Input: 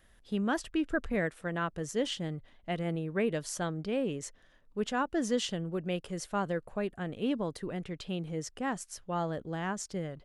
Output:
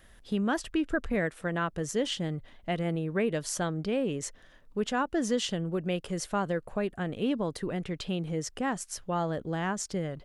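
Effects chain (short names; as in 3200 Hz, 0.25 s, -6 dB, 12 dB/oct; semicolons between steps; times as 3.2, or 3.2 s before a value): compressor 1.5:1, threshold -39 dBFS, peak gain reduction 5.5 dB; gain +6.5 dB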